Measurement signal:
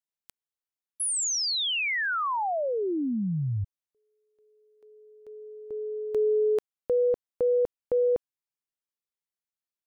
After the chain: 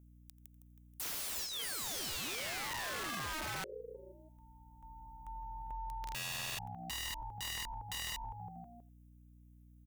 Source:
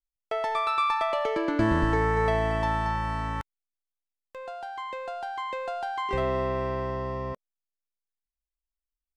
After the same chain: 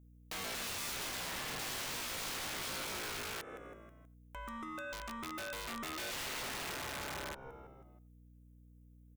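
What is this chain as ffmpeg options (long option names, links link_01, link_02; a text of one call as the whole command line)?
ffmpeg -i in.wav -filter_complex "[0:a]highshelf=frequency=4600:gain=-5,asplit=2[link_01][link_02];[link_02]asplit=4[link_03][link_04][link_05][link_06];[link_03]adelay=160,afreqshift=-64,volume=-15.5dB[link_07];[link_04]adelay=320,afreqshift=-128,volume=-21.7dB[link_08];[link_05]adelay=480,afreqshift=-192,volume=-27.9dB[link_09];[link_06]adelay=640,afreqshift=-256,volume=-34.1dB[link_10];[link_07][link_08][link_09][link_10]amix=inputs=4:normalize=0[link_11];[link_01][link_11]amix=inputs=2:normalize=0,aeval=exprs='val(0)*sin(2*PI*470*n/s)':channel_layout=same,acontrast=56,asuperstop=centerf=4500:order=4:qfactor=2.6,aemphasis=mode=production:type=50fm,asplit=2[link_12][link_13];[link_13]aecho=0:1:87:0.0944[link_14];[link_12][link_14]amix=inputs=2:normalize=0,aeval=exprs='(mod(13.3*val(0)+1,2)-1)/13.3':channel_layout=same,aeval=exprs='val(0)+0.00158*(sin(2*PI*60*n/s)+sin(2*PI*2*60*n/s)/2+sin(2*PI*3*60*n/s)/3+sin(2*PI*4*60*n/s)/4+sin(2*PI*5*60*n/s)/5)':channel_layout=same,acompressor=threshold=-35dB:ratio=6:attack=0.81:release=222:knee=6:detection=rms,volume=-2.5dB" out.wav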